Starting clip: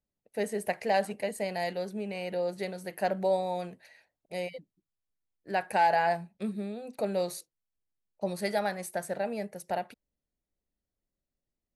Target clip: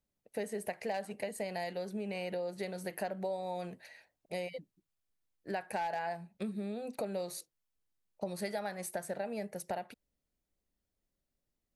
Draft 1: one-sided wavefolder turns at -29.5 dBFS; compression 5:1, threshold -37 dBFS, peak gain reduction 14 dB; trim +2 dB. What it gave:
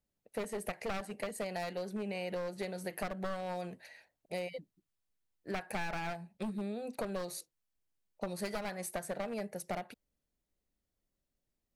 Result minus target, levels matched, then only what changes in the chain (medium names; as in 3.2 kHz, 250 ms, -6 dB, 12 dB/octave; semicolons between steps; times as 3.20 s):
one-sided wavefolder: distortion +26 dB
change: one-sided wavefolder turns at -17.5 dBFS